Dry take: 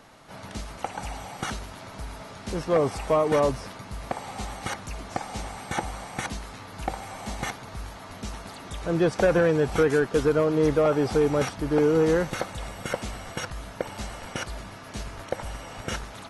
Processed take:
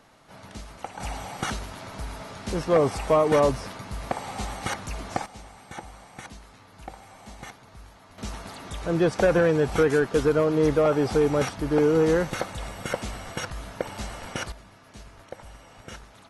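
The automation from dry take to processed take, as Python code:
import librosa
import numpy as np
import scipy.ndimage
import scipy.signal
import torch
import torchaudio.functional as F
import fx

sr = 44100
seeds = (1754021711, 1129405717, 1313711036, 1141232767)

y = fx.gain(x, sr, db=fx.steps((0.0, -4.5), (1.0, 2.0), (5.26, -10.0), (8.18, 0.5), (14.52, -10.0)))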